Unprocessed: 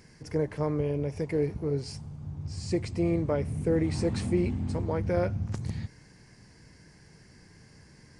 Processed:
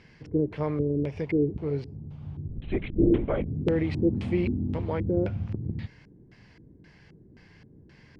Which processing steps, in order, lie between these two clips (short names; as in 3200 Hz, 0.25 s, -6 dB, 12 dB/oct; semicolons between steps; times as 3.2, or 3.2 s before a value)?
LFO low-pass square 1.9 Hz 340–3100 Hz; 2.48–3.46 LPC vocoder at 8 kHz whisper